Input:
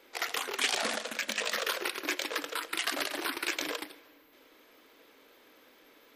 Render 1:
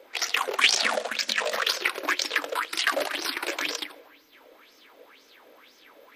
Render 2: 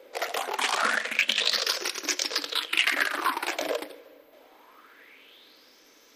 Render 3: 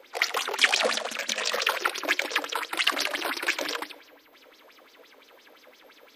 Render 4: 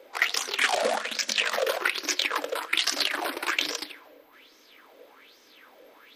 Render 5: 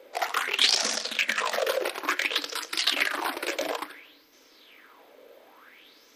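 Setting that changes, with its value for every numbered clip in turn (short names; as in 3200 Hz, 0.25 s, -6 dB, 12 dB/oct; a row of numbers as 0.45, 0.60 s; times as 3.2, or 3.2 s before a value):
LFO bell, rate: 2, 0.25, 5.8, 1.2, 0.57 Hz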